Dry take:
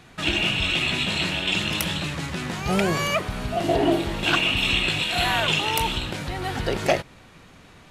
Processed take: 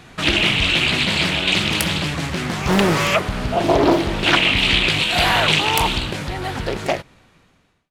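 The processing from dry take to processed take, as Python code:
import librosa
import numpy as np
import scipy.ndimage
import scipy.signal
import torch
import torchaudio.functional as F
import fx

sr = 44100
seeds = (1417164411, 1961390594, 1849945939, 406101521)

y = fx.fade_out_tail(x, sr, length_s=2.06)
y = fx.high_shelf(y, sr, hz=11000.0, db=-7.5, at=(3.29, 4.9))
y = fx.doppler_dist(y, sr, depth_ms=0.67)
y = F.gain(torch.from_numpy(y), 6.0).numpy()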